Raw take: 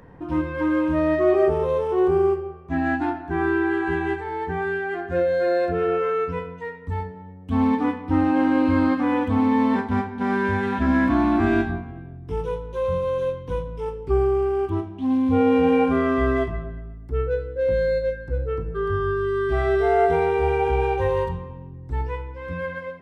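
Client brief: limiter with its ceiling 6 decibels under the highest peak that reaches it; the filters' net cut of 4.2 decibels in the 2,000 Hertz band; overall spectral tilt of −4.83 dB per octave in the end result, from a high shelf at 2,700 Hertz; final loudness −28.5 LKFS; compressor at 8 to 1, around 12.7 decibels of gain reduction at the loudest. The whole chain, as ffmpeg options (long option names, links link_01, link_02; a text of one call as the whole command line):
ffmpeg -i in.wav -af "equalizer=frequency=2000:width_type=o:gain=-7.5,highshelf=frequency=2700:gain=4.5,acompressor=threshold=-29dB:ratio=8,volume=6dB,alimiter=limit=-20dB:level=0:latency=1" out.wav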